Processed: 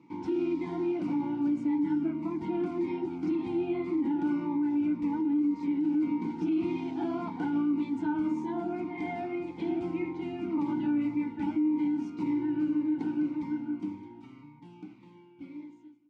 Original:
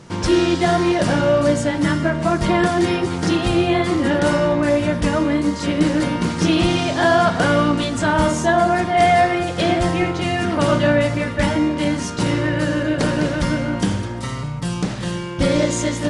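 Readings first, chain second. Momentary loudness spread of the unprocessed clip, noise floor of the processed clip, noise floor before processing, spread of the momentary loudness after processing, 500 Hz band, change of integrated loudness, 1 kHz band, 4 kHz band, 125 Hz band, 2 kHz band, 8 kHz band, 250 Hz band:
5 LU, -53 dBFS, -27 dBFS, 8 LU, -18.5 dB, -12.0 dB, -20.5 dB, under -25 dB, -23.0 dB, -24.5 dB, under -35 dB, -8.5 dB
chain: fade out at the end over 4.07 s; vowel filter u; treble shelf 8.6 kHz -8 dB; small resonant body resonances 1.5 kHz, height 18 dB, ringing for 55 ms; peak limiter -20.5 dBFS, peak gain reduction 10.5 dB; dynamic bell 2.8 kHz, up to -5 dB, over -56 dBFS, Q 1.2; high-pass 63 Hz; Shepard-style phaser falling 1.8 Hz; trim -1 dB

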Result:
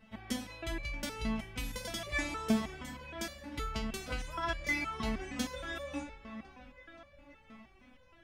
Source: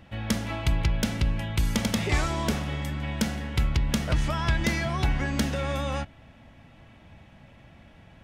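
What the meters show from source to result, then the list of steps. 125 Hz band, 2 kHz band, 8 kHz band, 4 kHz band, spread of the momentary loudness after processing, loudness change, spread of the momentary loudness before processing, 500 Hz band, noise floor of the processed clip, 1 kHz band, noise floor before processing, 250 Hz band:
-18.0 dB, -5.5 dB, -8.5 dB, -8.5 dB, 21 LU, -10.0 dB, 5 LU, -8.0 dB, -62 dBFS, -7.5 dB, -53 dBFS, -8.0 dB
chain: on a send: feedback echo behind a low-pass 527 ms, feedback 60%, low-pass 2.9 kHz, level -12.5 dB; on the sum: resonator arpeggio 6.4 Hz 220–580 Hz; trim +6.5 dB

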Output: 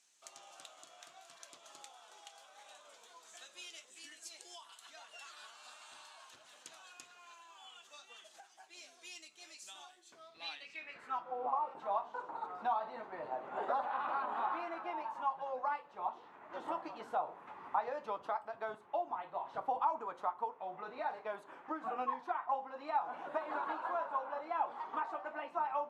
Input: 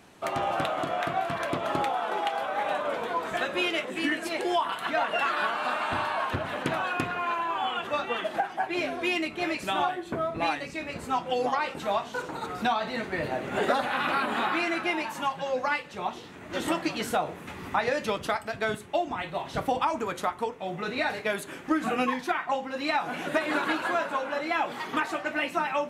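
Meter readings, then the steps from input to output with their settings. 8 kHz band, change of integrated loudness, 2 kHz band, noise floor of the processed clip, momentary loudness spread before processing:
-10.5 dB, -10.5 dB, -19.5 dB, -62 dBFS, 5 LU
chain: dynamic bell 2 kHz, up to -7 dB, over -44 dBFS, Q 1.1; band-pass sweep 6.7 kHz -> 950 Hz, 10.04–11.44 s; spectral replace 11.29–11.68 s, 1.3–12 kHz both; trim -2.5 dB

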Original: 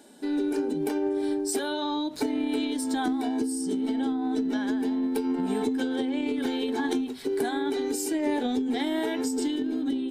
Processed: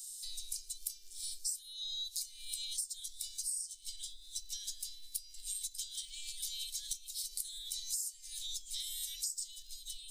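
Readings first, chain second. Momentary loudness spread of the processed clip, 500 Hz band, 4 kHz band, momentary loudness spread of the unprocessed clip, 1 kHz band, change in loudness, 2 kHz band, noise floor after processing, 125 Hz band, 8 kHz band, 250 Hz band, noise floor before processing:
6 LU, under -40 dB, -2.0 dB, 2 LU, under -40 dB, -11.5 dB, -26.0 dB, -55 dBFS, no reading, +1.5 dB, under -40 dB, -34 dBFS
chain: inverse Chebyshev band-stop 110–1300 Hz, stop band 70 dB; compression 12:1, threshold -51 dBFS, peak gain reduction 23 dB; trim +15 dB

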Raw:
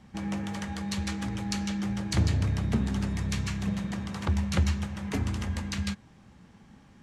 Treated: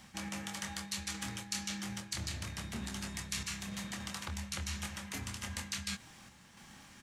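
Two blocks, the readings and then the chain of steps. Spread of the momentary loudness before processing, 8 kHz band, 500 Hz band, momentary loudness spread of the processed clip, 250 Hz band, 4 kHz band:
7 LU, +1.5 dB, -13.0 dB, 10 LU, -13.5 dB, -1.5 dB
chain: tilt shelf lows -7 dB, about 850 Hz; doubling 26 ms -8.5 dB; random-step tremolo; band-stop 440 Hz, Q 12; reverse; compression 5:1, threshold -41 dBFS, peak gain reduction 16 dB; reverse; treble shelf 7.5 kHz +10.5 dB; trim +2 dB

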